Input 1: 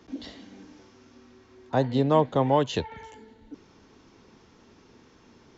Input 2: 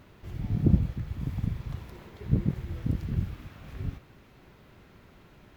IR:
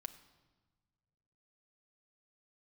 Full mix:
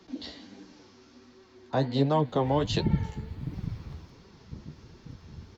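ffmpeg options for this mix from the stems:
-filter_complex "[0:a]acrossover=split=420[a][b];[b]acompressor=threshold=-25dB:ratio=2[c];[a][c]amix=inputs=2:normalize=0,volume=2.5dB[d];[1:a]highshelf=f=4.3k:g=-8,adelay=2200,afade=t=out:st=3.86:d=0.31:silence=0.237137,asplit=2[e][f];[f]volume=-20.5dB,aecho=0:1:315|630|945|1260|1575|1890|2205|2520|2835:1|0.59|0.348|0.205|0.121|0.0715|0.0422|0.0249|0.0147[g];[d][e][g]amix=inputs=3:normalize=0,equalizer=f=4.4k:w=2.7:g=7,flanger=delay=5.1:depth=8.9:regen=37:speed=1.4:shape=sinusoidal"

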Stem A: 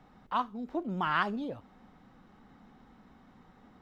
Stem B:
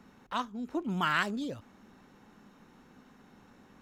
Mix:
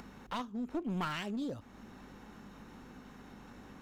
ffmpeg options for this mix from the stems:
-filter_complex "[0:a]equalizer=f=250:t=o:w=0.67:g=5,equalizer=f=1k:t=o:w=0.67:g=-10,equalizer=f=2.5k:t=o:w=0.67:g=7,volume=-11dB,asplit=2[a][b];[1:a]aeval=exprs='val(0)+0.000562*(sin(2*PI*50*n/s)+sin(2*PI*2*50*n/s)/2+sin(2*PI*3*50*n/s)/3+sin(2*PI*4*50*n/s)/4+sin(2*PI*5*50*n/s)/5)':c=same,volume=2dB[c];[b]apad=whole_len=168263[d];[c][d]sidechaincompress=threshold=-48dB:ratio=5:attack=16:release=418[e];[a][e]amix=inputs=2:normalize=0,aeval=exprs='clip(val(0),-1,0.02)':c=same,acompressor=mode=upward:threshold=-46dB:ratio=2.5"

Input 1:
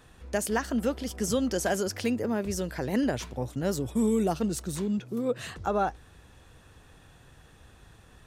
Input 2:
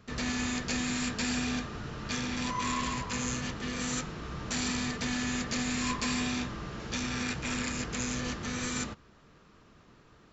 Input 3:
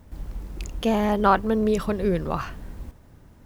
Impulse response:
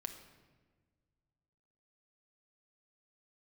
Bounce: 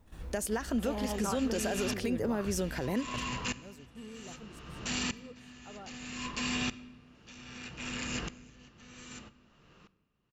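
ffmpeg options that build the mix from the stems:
-filter_complex "[0:a]volume=1dB[a];[1:a]equalizer=f=2.8k:w=7.4:g=11.5,aeval=exprs='val(0)*pow(10,-32*if(lt(mod(-0.63*n/s,1),2*abs(-0.63)/1000),1-mod(-0.63*n/s,1)/(2*abs(-0.63)/1000),(mod(-0.63*n/s,1)-2*abs(-0.63)/1000)/(1-2*abs(-0.63)/1000))/20)':c=same,adelay=350,volume=-2.5dB,asplit=2[b][c];[c]volume=-3dB[d];[2:a]flanger=delay=1.9:depth=9.8:regen=67:speed=1.1:shape=triangular,volume=-7dB,asplit=2[e][f];[f]apad=whole_len=364317[g];[a][g]sidechaingate=range=-24dB:threshold=-57dB:ratio=16:detection=peak[h];[3:a]atrim=start_sample=2205[i];[d][i]afir=irnorm=-1:irlink=0[j];[h][b][e][j]amix=inputs=4:normalize=0,alimiter=limit=-22.5dB:level=0:latency=1:release=154"

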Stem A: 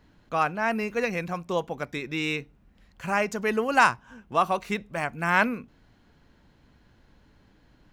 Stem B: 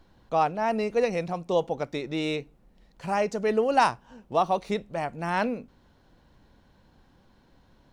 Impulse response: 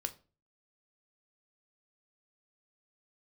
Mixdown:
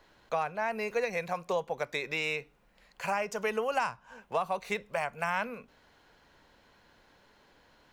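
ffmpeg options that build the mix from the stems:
-filter_complex "[0:a]highpass=f=390:w=0.5412,highpass=f=390:w=1.3066,volume=1dB,asplit=2[a][b];[b]volume=-11.5dB[c];[1:a]volume=-3.5dB[d];[2:a]atrim=start_sample=2205[e];[c][e]afir=irnorm=-1:irlink=0[f];[a][d][f]amix=inputs=3:normalize=0,lowshelf=f=310:g=-7,acrossover=split=240[g][h];[h]acompressor=threshold=-29dB:ratio=5[i];[g][i]amix=inputs=2:normalize=0"

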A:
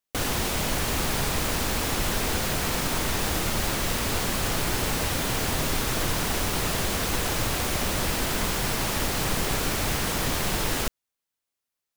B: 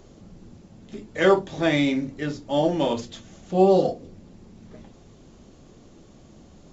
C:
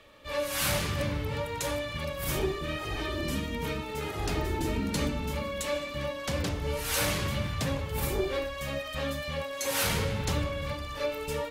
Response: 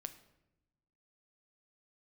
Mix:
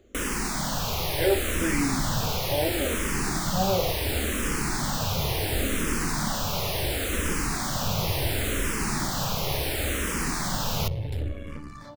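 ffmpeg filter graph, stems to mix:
-filter_complex "[0:a]volume=1dB[a];[1:a]volume=-5dB[b];[2:a]equalizer=f=150:w=0.4:g=10,acrossover=split=240[c][d];[d]acompressor=threshold=-34dB:ratio=6[e];[c][e]amix=inputs=2:normalize=0,aeval=exprs='0.237*(cos(1*acos(clip(val(0)/0.237,-1,1)))-cos(1*PI/2))+0.0335*(cos(6*acos(clip(val(0)/0.237,-1,1)))-cos(6*PI/2))':c=same,adelay=850,volume=-5dB[f];[a][b][f]amix=inputs=3:normalize=0,asplit=2[g][h];[h]afreqshift=-0.71[i];[g][i]amix=inputs=2:normalize=1"

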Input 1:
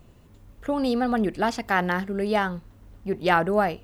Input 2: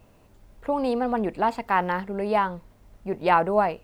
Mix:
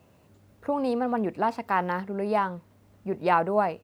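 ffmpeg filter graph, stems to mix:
-filter_complex "[0:a]volume=-9.5dB[a];[1:a]adelay=0.3,volume=-3dB,asplit=2[b][c];[c]apad=whole_len=169115[d];[a][d]sidechaincompress=threshold=-30dB:ratio=8:attack=16:release=913[e];[e][b]amix=inputs=2:normalize=0,highpass=f=75:w=0.5412,highpass=f=75:w=1.3066"

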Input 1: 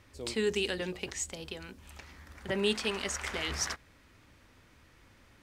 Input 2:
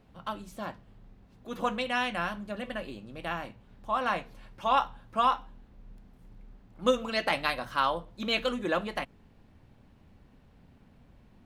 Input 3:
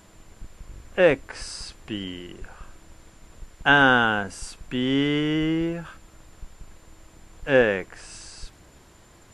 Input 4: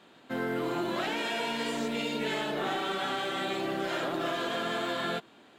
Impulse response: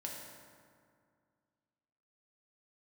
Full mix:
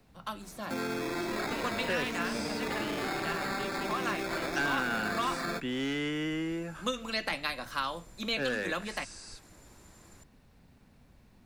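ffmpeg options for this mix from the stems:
-filter_complex "[0:a]adelay=950,volume=-10.5dB[a];[1:a]highshelf=f=2.8k:g=11,volume=-2.5dB[b];[2:a]highshelf=f=5.3k:g=6,asoftclip=type=hard:threshold=-15dB,adelay=900,volume=-5dB[c];[3:a]acrusher=samples=15:mix=1:aa=0.000001,adelay=400,volume=1dB[d];[a][b][c][d]amix=inputs=4:normalize=0,equalizer=f=3.1k:w=4.9:g=-6,acrossover=split=150|370|1200|5100[e][f][g][h][i];[e]acompressor=threshold=-50dB:ratio=4[j];[f]acompressor=threshold=-36dB:ratio=4[k];[g]acompressor=threshold=-40dB:ratio=4[l];[h]acompressor=threshold=-31dB:ratio=4[m];[i]acompressor=threshold=-50dB:ratio=4[n];[j][k][l][m][n]amix=inputs=5:normalize=0"

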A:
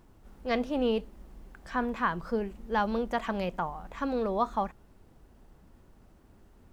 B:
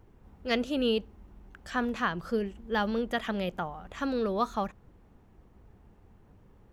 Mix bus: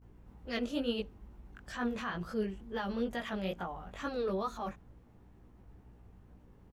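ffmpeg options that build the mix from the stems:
-filter_complex "[0:a]equalizer=f=380:t=o:w=1.7:g=-7,acrossover=split=1300[a][b];[a]aeval=exprs='val(0)*(1-0.7/2+0.7/2*cos(2*PI*8.5*n/s))':c=same[c];[b]aeval=exprs='val(0)*(1-0.7/2-0.7/2*cos(2*PI*8.5*n/s))':c=same[d];[c][d]amix=inputs=2:normalize=0,volume=-16dB,asplit=2[e][f];[1:a]flanger=delay=16.5:depth=4.9:speed=2.2,volume=-1,adelay=20,volume=0.5dB[g];[f]apad=whole_len=297280[h];[g][h]sidechaincompress=threshold=-53dB:ratio=8:attack=34:release=129[i];[e][i]amix=inputs=2:normalize=0,aeval=exprs='val(0)+0.00112*(sin(2*PI*60*n/s)+sin(2*PI*2*60*n/s)/2+sin(2*PI*3*60*n/s)/3+sin(2*PI*4*60*n/s)/4+sin(2*PI*5*60*n/s)/5)':c=same"

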